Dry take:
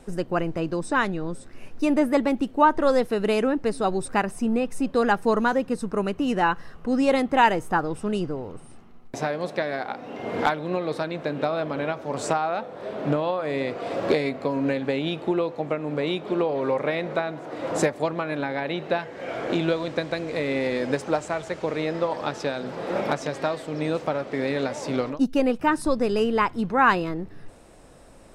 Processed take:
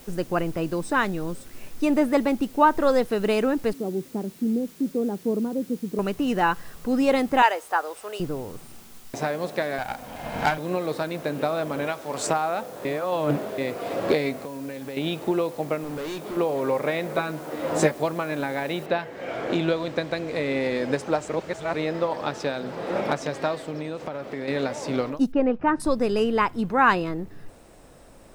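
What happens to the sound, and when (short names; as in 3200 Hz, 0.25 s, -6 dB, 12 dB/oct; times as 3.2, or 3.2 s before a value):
3.73–5.99 Butterworth band-pass 260 Hz, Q 0.92
7.42–8.2 HPF 490 Hz 24 dB/oct
9.78–10.58 minimum comb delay 1.3 ms
11.87–12.27 tilt +2 dB/oct
12.85–13.58 reverse
14.39–14.97 compressor 3:1, threshold -34 dBFS
15.83–16.37 hard clip -29.5 dBFS
17.14–18.03 doubler 13 ms -4 dB
18.86 noise floor step -51 dB -68 dB
21.29–21.74 reverse
23.7–24.48 compressor, threshold -27 dBFS
25.32–25.8 LPF 1800 Hz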